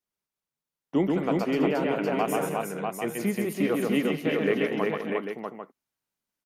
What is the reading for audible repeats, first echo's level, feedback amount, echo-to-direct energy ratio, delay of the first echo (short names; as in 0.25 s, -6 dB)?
6, -3.0 dB, no steady repeat, 2.0 dB, 0.133 s